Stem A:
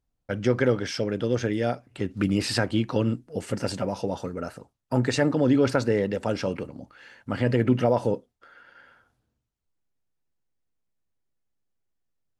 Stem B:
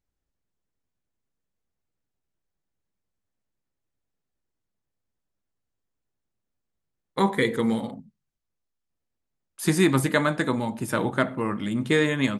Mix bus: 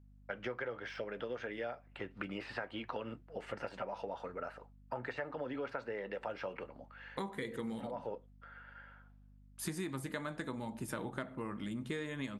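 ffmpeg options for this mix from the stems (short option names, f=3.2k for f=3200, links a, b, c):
-filter_complex "[0:a]deesser=0.9,acrossover=split=540 3100:gain=0.141 1 0.0794[a][b][c];[a][b][c]amix=inputs=3:normalize=0,flanger=delay=4.2:depth=1.7:regen=-73:speed=0.71:shape=triangular,volume=2.5dB[d];[1:a]volume=-8.5dB,asplit=2[e][f];[f]apad=whole_len=546478[g];[d][g]sidechaincompress=threshold=-56dB:ratio=3:attack=16:release=168[h];[h][e]amix=inputs=2:normalize=0,aeval=exprs='val(0)+0.00112*(sin(2*PI*50*n/s)+sin(2*PI*2*50*n/s)/2+sin(2*PI*3*50*n/s)/3+sin(2*PI*4*50*n/s)/4+sin(2*PI*5*50*n/s)/5)':c=same,acompressor=threshold=-37dB:ratio=6"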